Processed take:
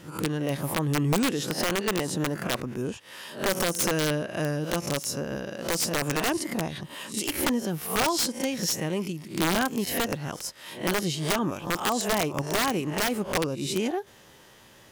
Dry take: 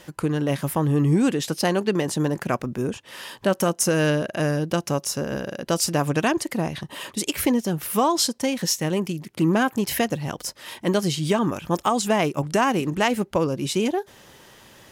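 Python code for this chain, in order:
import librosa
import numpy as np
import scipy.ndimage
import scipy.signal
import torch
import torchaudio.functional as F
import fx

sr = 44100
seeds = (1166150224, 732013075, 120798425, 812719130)

y = fx.spec_swells(x, sr, rise_s=0.36)
y = (np.mod(10.0 ** (11.5 / 20.0) * y + 1.0, 2.0) - 1.0) / 10.0 ** (11.5 / 20.0)
y = y * 10.0 ** (-5.5 / 20.0)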